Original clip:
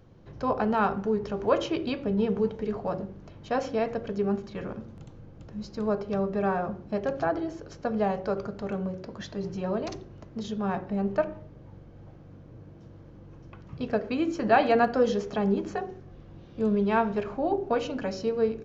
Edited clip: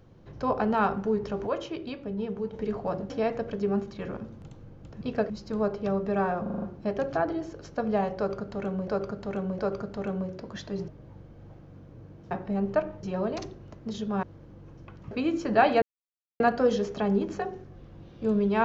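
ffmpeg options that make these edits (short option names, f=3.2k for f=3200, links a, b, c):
-filter_complex "[0:a]asplit=19[a][b][c][d][e][f][g][h][i][j][k][l][m][n][o][p][q][r][s];[a]atrim=end=1.472[t];[b]atrim=start=1.468:end=2.532,asetpts=PTS-STARTPTS,volume=-6.5dB[u];[c]atrim=start=2.528:end=3.102[v];[d]atrim=start=3.658:end=5.572[w];[e]atrim=start=13.758:end=14.052[x];[f]atrim=start=5.568:end=6.732[y];[g]atrim=start=6.688:end=6.732[z];[h]atrim=start=6.688:end=6.732[aa];[i]atrim=start=6.688:end=6.732[ab];[j]atrim=start=6.688:end=6.732[ac];[k]atrim=start=6.688:end=8.952[ad];[l]atrim=start=8.238:end=8.952[ae];[m]atrim=start=8.238:end=9.532[af];[n]atrim=start=11.448:end=12.882[ag];[o]atrim=start=10.728:end=11.452[ah];[p]atrim=start=9.528:end=10.732[ai];[q]atrim=start=12.878:end=13.762[aj];[r]atrim=start=14.048:end=14.76,asetpts=PTS-STARTPTS,afade=t=out:st=0.708:d=0.004:c=hsin,apad=pad_dur=0.58[ak];[s]atrim=start=14.76,asetpts=PTS-STARTPTS,afade=t=in:d=0.004:c=hsin[al];[t][u]acrossfade=d=0.004:c1=hsin:c2=hsin[am];[am][v]acrossfade=d=0.004:c1=hsin:c2=hsin[an];[an][w]acrossfade=d=0.004:c1=hsin:c2=hsin[ao];[ao][x]acrossfade=d=0.004:c1=hsin:c2=hsin[ap];[ap][y]acrossfade=d=0.004:c1=hsin:c2=hsin[aq];[aq][z]acrossfade=d=0.004:c1=hsin:c2=hsin[ar];[ar][aa]acrossfade=d=0.004:c1=hsin:c2=hsin[as];[as][ab]acrossfade=d=0.004:c1=hsin:c2=hsin[at];[at][ac]acrossfade=d=0.004:c1=hsin:c2=hsin[au];[au][ad]acrossfade=d=0.004:c1=hsin:c2=hsin[av];[av][ae]acrossfade=d=0.004:c1=hsin:c2=hsin[aw];[aw][af]acrossfade=d=0.004:c1=hsin:c2=hsin[ax];[ax][ag]acrossfade=d=0.004:c1=hsin:c2=hsin[ay];[ay][ah]acrossfade=d=0.004:c1=hsin:c2=hsin[az];[az][ai]acrossfade=d=0.004:c1=hsin:c2=hsin[ba];[ba][aj]acrossfade=d=0.004:c1=hsin:c2=hsin[bb];[ak][al]concat=n=2:v=0:a=1[bc];[bb][bc]acrossfade=d=0.004:c1=hsin:c2=hsin"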